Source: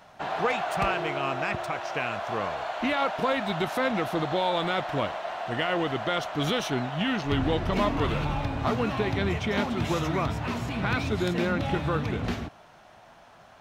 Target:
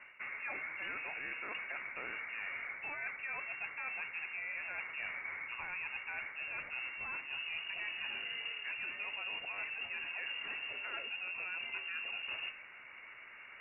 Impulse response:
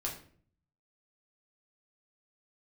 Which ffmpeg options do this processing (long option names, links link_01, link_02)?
-af "bandreject=frequency=151.9:width_type=h:width=4,bandreject=frequency=303.8:width_type=h:width=4,bandreject=frequency=455.7:width_type=h:width=4,bandreject=frequency=607.6:width_type=h:width=4,bandreject=frequency=759.5:width_type=h:width=4,bandreject=frequency=911.4:width_type=h:width=4,bandreject=frequency=1063.3:width_type=h:width=4,bandreject=frequency=1215.2:width_type=h:width=4,bandreject=frequency=1367.1:width_type=h:width=4,bandreject=frequency=1519:width_type=h:width=4,bandreject=frequency=1670.9:width_type=h:width=4,bandreject=frequency=1822.8:width_type=h:width=4,bandreject=frequency=1974.7:width_type=h:width=4,bandreject=frequency=2126.6:width_type=h:width=4,bandreject=frequency=2278.5:width_type=h:width=4,bandreject=frequency=2430.4:width_type=h:width=4,bandreject=frequency=2582.3:width_type=h:width=4,bandreject=frequency=2734.2:width_type=h:width=4,bandreject=frequency=2886.1:width_type=h:width=4,bandreject=frequency=3038:width_type=h:width=4,bandreject=frequency=3189.9:width_type=h:width=4,bandreject=frequency=3341.8:width_type=h:width=4,bandreject=frequency=3493.7:width_type=h:width=4,bandreject=frequency=3645.6:width_type=h:width=4,bandreject=frequency=3797.5:width_type=h:width=4,bandreject=frequency=3949.4:width_type=h:width=4,bandreject=frequency=4101.3:width_type=h:width=4,bandreject=frequency=4253.2:width_type=h:width=4,bandreject=frequency=4405.1:width_type=h:width=4,bandreject=frequency=4557:width_type=h:width=4,bandreject=frequency=4708.9:width_type=h:width=4,bandreject=frequency=4860.8:width_type=h:width=4,areverse,acompressor=threshold=-40dB:ratio=6,areverse,lowpass=frequency=2500:width_type=q:width=0.5098,lowpass=frequency=2500:width_type=q:width=0.6013,lowpass=frequency=2500:width_type=q:width=0.9,lowpass=frequency=2500:width_type=q:width=2.563,afreqshift=-2900"